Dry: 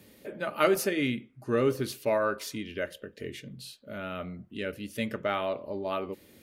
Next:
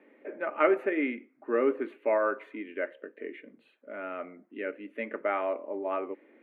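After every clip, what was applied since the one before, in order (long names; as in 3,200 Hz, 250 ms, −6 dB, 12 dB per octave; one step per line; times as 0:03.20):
elliptic band-pass filter 280–2,200 Hz, stop band 40 dB
level +1 dB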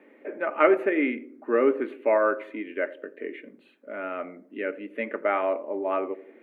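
feedback echo with a band-pass in the loop 84 ms, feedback 59%, band-pass 320 Hz, level −15.5 dB
level +4.5 dB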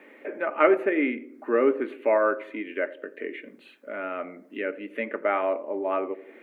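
one half of a high-frequency compander encoder only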